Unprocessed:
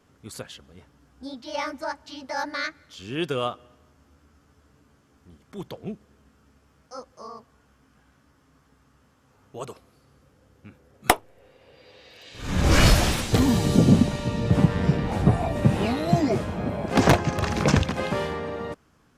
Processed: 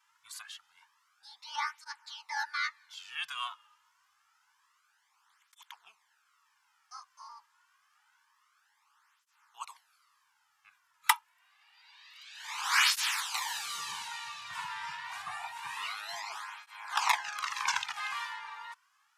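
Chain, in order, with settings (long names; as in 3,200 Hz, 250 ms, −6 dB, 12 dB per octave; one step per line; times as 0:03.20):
elliptic high-pass filter 910 Hz, stop band 40 dB
through-zero flanger with one copy inverted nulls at 0.27 Hz, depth 2.8 ms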